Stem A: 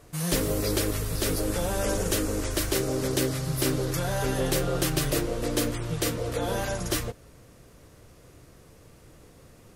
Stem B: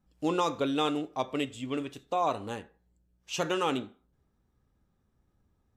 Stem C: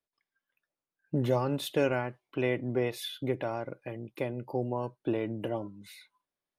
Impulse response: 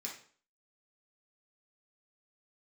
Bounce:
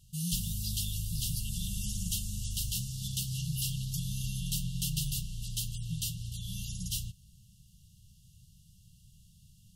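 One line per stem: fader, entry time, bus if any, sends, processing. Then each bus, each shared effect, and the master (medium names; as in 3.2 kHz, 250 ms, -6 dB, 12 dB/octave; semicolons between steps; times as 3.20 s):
-4.5 dB, 0.00 s, no send, none
-10.0 dB, 0.05 s, no send, none
-9.5 dB, 0.00 s, no send, none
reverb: none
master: FFT band-reject 210–2700 Hz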